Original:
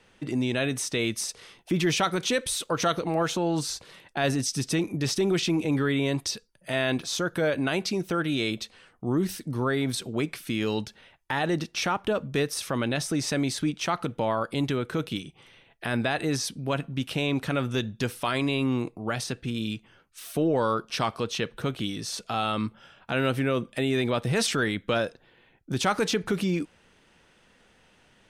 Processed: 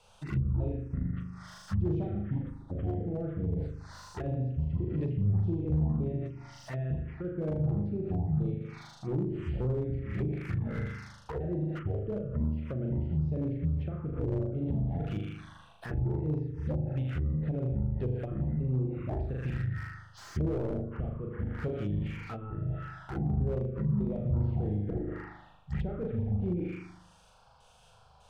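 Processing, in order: trilling pitch shifter -11 st, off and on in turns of 0.3 s; bell 260 Hz -14 dB 0.6 oct; notches 60/120/180 Hz; flutter echo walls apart 6.7 m, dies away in 0.97 s; treble ducked by the level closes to 310 Hz, closed at -24.5 dBFS; in parallel at +2 dB: limiter -25 dBFS, peak gain reduction 9 dB; on the sum: envelope phaser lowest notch 310 Hz, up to 2800 Hz, full sweep at -17.5 dBFS; slew limiter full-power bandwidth 27 Hz; gain -5.5 dB

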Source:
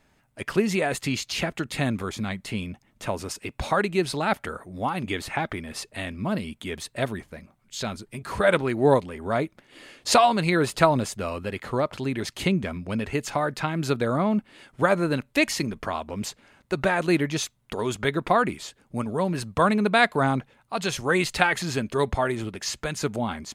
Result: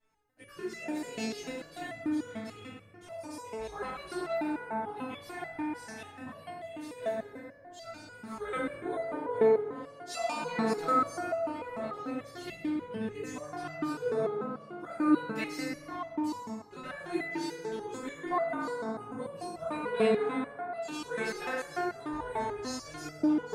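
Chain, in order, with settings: chorus voices 2, 0.11 Hz, delay 19 ms, depth 1.1 ms; FDN reverb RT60 3.3 s, high-frequency decay 0.3×, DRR -7 dB; stepped resonator 6.8 Hz 220–670 Hz

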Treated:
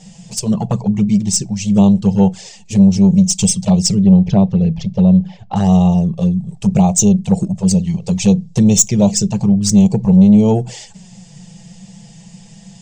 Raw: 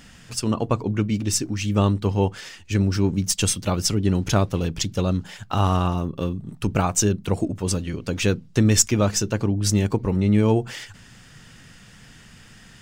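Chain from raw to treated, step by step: EQ curve 110 Hz 0 dB, 190 Hz +15 dB, 280 Hz -11 dB, 410 Hz +3 dB, 810 Hz +8 dB, 1400 Hz -16 dB, 2100 Hz -4 dB, 3200 Hz -1 dB, 7800 Hz +10 dB, 13000 Hz -22 dB; soft clip -5.5 dBFS, distortion -19 dB; 4.03–5.56 air absorption 300 m; envelope flanger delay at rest 6.9 ms, full sweep at -11.5 dBFS; on a send: reverb RT60 0.25 s, pre-delay 5 ms, DRR 20.5 dB; on the sum: gain +4 dB

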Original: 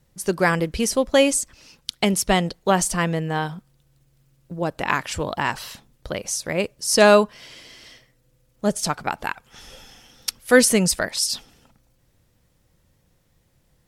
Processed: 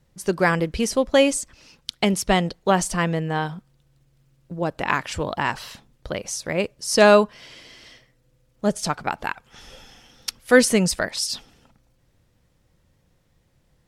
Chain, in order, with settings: high shelf 8300 Hz -9 dB

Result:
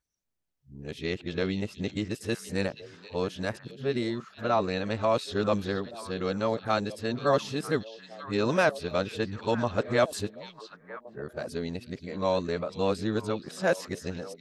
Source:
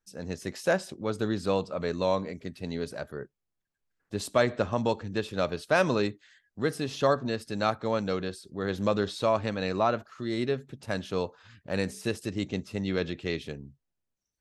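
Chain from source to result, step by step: whole clip reversed; delay with a stepping band-pass 0.473 s, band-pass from 3600 Hz, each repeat -1.4 oct, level -9.5 dB

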